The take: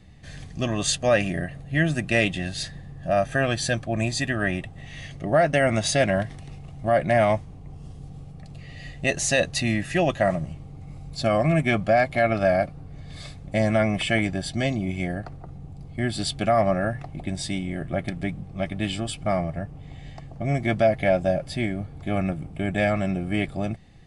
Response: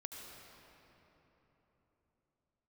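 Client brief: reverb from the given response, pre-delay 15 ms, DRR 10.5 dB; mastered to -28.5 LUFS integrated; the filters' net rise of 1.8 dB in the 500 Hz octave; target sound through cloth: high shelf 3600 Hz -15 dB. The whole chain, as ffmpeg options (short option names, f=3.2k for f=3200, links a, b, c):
-filter_complex "[0:a]equalizer=f=500:t=o:g=3,asplit=2[a][b];[1:a]atrim=start_sample=2205,adelay=15[c];[b][c]afir=irnorm=-1:irlink=0,volume=-8dB[d];[a][d]amix=inputs=2:normalize=0,highshelf=f=3.6k:g=-15,volume=-4.5dB"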